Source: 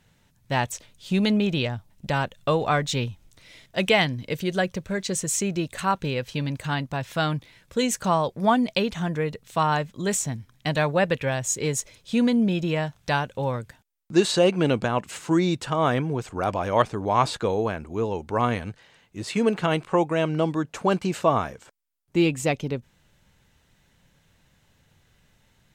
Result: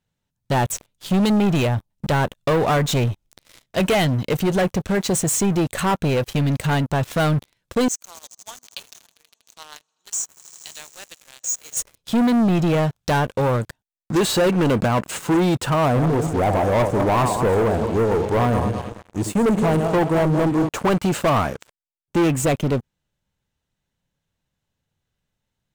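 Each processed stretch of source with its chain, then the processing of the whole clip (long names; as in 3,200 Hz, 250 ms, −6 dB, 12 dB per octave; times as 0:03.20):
0:07.88–0:11.77: one scale factor per block 7 bits + resonant band-pass 6,300 Hz, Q 3.7 + echo that builds up and dies away 80 ms, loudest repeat 5, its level −18 dB
0:15.85–0:20.69: feedback delay that plays each chunk backwards 106 ms, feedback 58%, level −9 dB + flat-topped bell 2,600 Hz −11.5 dB 2.3 octaves
whole clip: parametric band 2,000 Hz −4 dB 0.77 octaves; leveller curve on the samples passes 5; dynamic equaliser 4,800 Hz, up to −6 dB, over −30 dBFS, Q 0.84; level −6.5 dB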